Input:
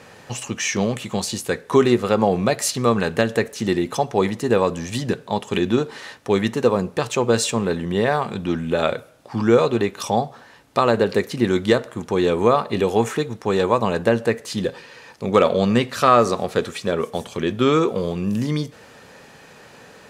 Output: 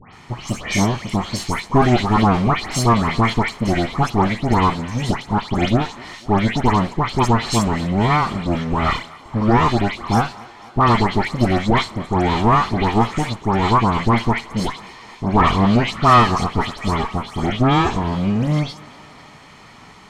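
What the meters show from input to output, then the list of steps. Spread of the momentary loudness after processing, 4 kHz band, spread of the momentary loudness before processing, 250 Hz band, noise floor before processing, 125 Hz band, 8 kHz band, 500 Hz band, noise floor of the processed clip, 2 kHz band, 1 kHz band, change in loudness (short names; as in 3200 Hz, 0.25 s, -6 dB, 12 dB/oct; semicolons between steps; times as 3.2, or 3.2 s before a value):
9 LU, +2.5 dB, 9 LU, +3.0 dB, -47 dBFS, +7.5 dB, -2.5 dB, -4.5 dB, -43 dBFS, +3.5 dB, +6.5 dB, +2.0 dB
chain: minimum comb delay 0.93 ms; notch 3400 Hz, Q 26; dispersion highs, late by 0.135 s, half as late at 2300 Hz; in parallel at -8 dB: wavefolder -10.5 dBFS; on the sum: air absorption 52 m; on a send: thinning echo 0.246 s, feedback 77%, high-pass 250 Hz, level -21.5 dB; on the sum: gain +1 dB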